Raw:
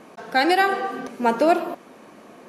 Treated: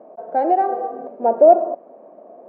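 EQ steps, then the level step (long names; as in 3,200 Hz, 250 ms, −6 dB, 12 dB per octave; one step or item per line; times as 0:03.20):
high-pass filter 260 Hz 12 dB per octave
low-pass with resonance 640 Hz, resonance Q 5.3
−3.5 dB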